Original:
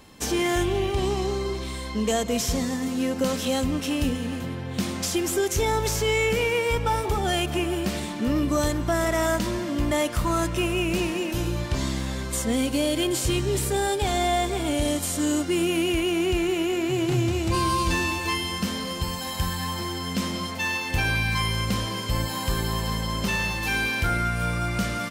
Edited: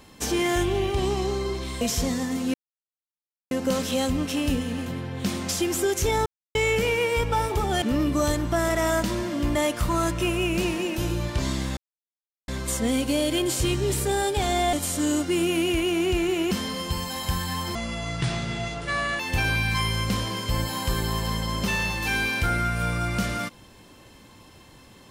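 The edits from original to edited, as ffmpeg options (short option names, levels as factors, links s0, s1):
-filter_complex "[0:a]asplit=11[s0][s1][s2][s3][s4][s5][s6][s7][s8][s9][s10];[s0]atrim=end=1.812[s11];[s1]atrim=start=2.318:end=3.05,asetpts=PTS-STARTPTS,afade=t=out:st=0.728:d=0.004:c=hsin,apad=pad_dur=0.97[s12];[s2]atrim=start=3.05:end=5.8,asetpts=PTS-STARTPTS,afade=t=in:d=0.004:c=hsin,afade=t=out:st=2.746:d=0.004:c=hsin[s13];[s3]atrim=start=5.8:end=6.09,asetpts=PTS-STARTPTS,volume=0[s14];[s4]atrim=start=6.09:end=7.362,asetpts=PTS-STARTPTS,afade=t=in:d=0.004:c=hsin[s15];[s5]atrim=start=8.178:end=12.13,asetpts=PTS-STARTPTS,afade=t=out:st=3.948:d=0.004:c=hsin,apad=pad_dur=0.71[s16];[s6]atrim=start=12.13:end=14.382,asetpts=PTS-STARTPTS,afade=t=in:d=0.004:c=hsin[s17];[s7]atrim=start=14.928:end=16.712[s18];[s8]atrim=start=18.618:end=19.864[s19];[s9]atrim=start=19.86:end=20.8,asetpts=PTS-STARTPTS,asetrate=28665,aresample=44100,atrim=end_sample=63775,asetpts=PTS-STARTPTS[s20];[s10]atrim=start=20.796[s21];[s12][s13][s14][s15]concat=n=4:v=0:a=1[s22];[s11][s22]acrossfade=d=0.004:c1=hsin:c2=hsin[s23];[s16][s17]concat=n=2:v=0:a=1[s24];[s23][s24]acrossfade=d=0.004:c1=hsin:c2=hsin[s25];[s25][s18]acrossfade=d=0.004:c1=hsin:c2=hsin[s26];[s26][s19]acrossfade=d=0.004:c1=hsin:c2=hsin[s27];[s27][s20]acrossfade=d=0.004:c1=hsin:c2=hsin[s28];[s28][s21]acrossfade=d=0.004:c1=hsin:c2=hsin"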